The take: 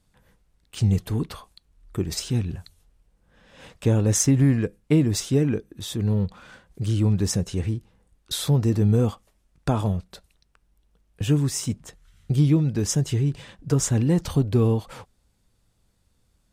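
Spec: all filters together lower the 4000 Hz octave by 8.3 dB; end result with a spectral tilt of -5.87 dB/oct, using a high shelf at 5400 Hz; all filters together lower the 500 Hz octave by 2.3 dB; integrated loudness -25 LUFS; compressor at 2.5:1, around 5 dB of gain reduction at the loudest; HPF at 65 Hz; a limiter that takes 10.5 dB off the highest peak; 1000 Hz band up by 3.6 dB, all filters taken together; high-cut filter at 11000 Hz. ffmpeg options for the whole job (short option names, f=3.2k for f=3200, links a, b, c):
-af "highpass=65,lowpass=11k,equalizer=f=500:t=o:g=-4,equalizer=f=1k:t=o:g=6.5,equalizer=f=4k:t=o:g=-9,highshelf=f=5.4k:g=-5,acompressor=threshold=-23dB:ratio=2.5,volume=7.5dB,alimiter=limit=-15.5dB:level=0:latency=1"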